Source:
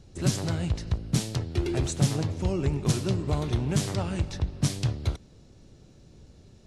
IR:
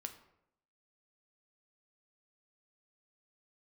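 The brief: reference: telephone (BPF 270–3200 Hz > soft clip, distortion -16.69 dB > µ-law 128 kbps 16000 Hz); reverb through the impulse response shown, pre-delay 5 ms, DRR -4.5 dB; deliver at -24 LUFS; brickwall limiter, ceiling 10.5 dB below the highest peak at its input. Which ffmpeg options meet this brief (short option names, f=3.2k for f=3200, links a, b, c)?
-filter_complex "[0:a]alimiter=limit=-20.5dB:level=0:latency=1,asplit=2[a][b];[1:a]atrim=start_sample=2205,adelay=5[c];[b][c]afir=irnorm=-1:irlink=0,volume=7.5dB[d];[a][d]amix=inputs=2:normalize=0,highpass=270,lowpass=3.2k,asoftclip=threshold=-22.5dB,volume=9dB" -ar 16000 -c:a pcm_mulaw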